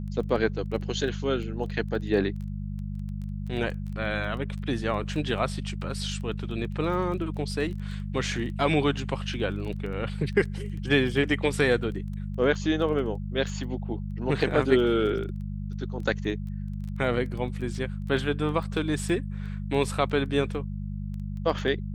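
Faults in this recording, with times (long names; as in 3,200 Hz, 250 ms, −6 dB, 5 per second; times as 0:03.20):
surface crackle 10 per second −35 dBFS
mains hum 50 Hz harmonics 4 −33 dBFS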